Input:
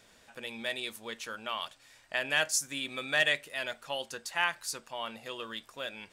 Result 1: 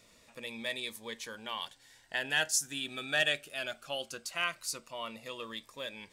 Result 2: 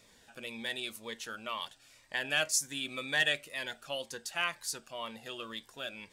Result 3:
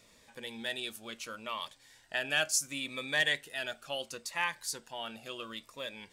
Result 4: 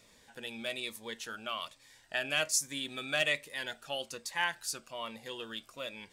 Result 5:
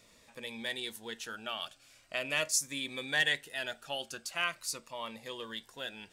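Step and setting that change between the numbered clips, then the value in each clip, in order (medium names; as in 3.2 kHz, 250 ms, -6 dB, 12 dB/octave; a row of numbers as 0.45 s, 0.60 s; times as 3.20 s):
Shepard-style phaser, rate: 0.2 Hz, 2 Hz, 0.71 Hz, 1.2 Hz, 0.42 Hz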